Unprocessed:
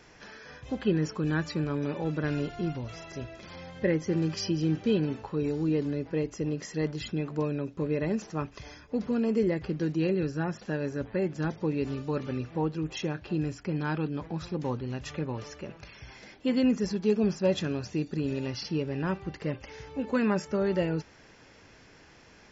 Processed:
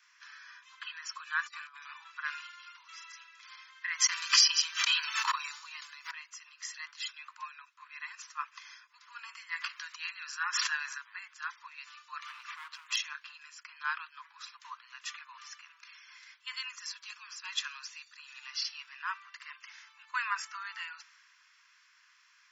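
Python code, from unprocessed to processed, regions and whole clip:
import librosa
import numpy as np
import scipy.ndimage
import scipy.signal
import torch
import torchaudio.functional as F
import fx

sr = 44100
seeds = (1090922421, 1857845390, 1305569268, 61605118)

y = fx.chain(x, sr, fx.cheby2_bandstop(low_hz=130.0, high_hz=430.0, order=4, stop_db=50),
    fx.high_shelf(hz=5000.0, db=2.0),
    fx.over_compress(threshold_db=-47.0, ratio=-0.5), at=(1.43, 1.83))
y = fx.chain(y, sr, fx.transient(attack_db=11, sustain_db=-5),
    fx.high_shelf(hz=4800.0, db=9.0),
    fx.sustainer(db_per_s=29.0), at=(3.91, 6.11))
y = fx.chain(y, sr, fx.low_shelf(hz=170.0, db=10.5),
    fx.env_flatten(amount_pct=70), at=(9.18, 10.98))
y = fx.chain(y, sr, fx.highpass(hz=43.0, slope=24),
    fx.overload_stage(gain_db=32.0),
    fx.env_flatten(amount_pct=100), at=(12.22, 12.96))
y = scipy.signal.sosfilt(scipy.signal.butter(16, 1000.0, 'highpass', fs=sr, output='sos'), y)
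y = fx.band_widen(y, sr, depth_pct=40)
y = y * librosa.db_to_amplitude(1.5)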